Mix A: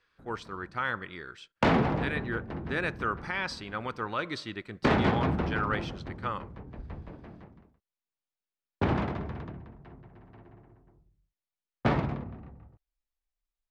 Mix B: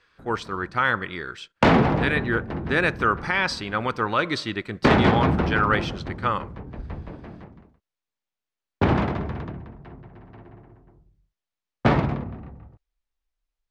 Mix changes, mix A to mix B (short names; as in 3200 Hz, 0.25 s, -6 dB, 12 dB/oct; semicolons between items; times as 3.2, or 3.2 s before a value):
speech +9.5 dB; background +7.0 dB